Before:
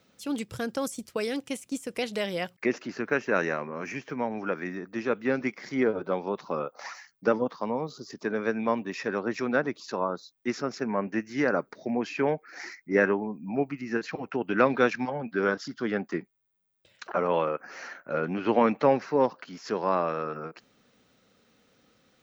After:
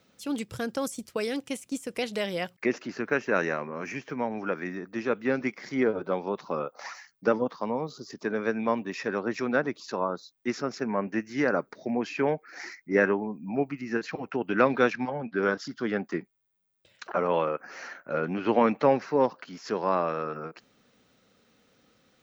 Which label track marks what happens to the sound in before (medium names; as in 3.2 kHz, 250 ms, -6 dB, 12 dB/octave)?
14.920000	15.430000	distance through air 99 m